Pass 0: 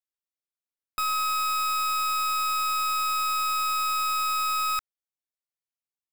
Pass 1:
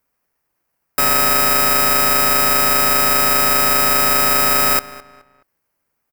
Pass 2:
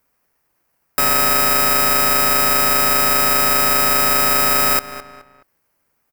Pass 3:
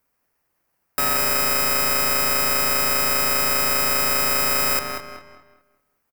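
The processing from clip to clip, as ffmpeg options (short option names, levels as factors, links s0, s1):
-filter_complex "[0:a]aemphasis=mode=production:type=75fm,asplit=2[s0][s1];[s1]acrusher=samples=12:mix=1:aa=0.000001,volume=0.631[s2];[s0][s2]amix=inputs=2:normalize=0,asplit=2[s3][s4];[s4]adelay=212,lowpass=f=3300:p=1,volume=0.15,asplit=2[s5][s6];[s6]adelay=212,lowpass=f=3300:p=1,volume=0.34,asplit=2[s7][s8];[s8]adelay=212,lowpass=f=3300:p=1,volume=0.34[s9];[s3][s5][s7][s9]amix=inputs=4:normalize=0,volume=1.26"
-af "alimiter=limit=0.447:level=0:latency=1:release=204,volume=1.78"
-filter_complex "[0:a]asplit=2[s0][s1];[s1]adelay=187,lowpass=f=4000:p=1,volume=0.501,asplit=2[s2][s3];[s3]adelay=187,lowpass=f=4000:p=1,volume=0.37,asplit=2[s4][s5];[s5]adelay=187,lowpass=f=4000:p=1,volume=0.37,asplit=2[s6][s7];[s7]adelay=187,lowpass=f=4000:p=1,volume=0.37[s8];[s0][s2][s4][s6][s8]amix=inputs=5:normalize=0,volume=0.562"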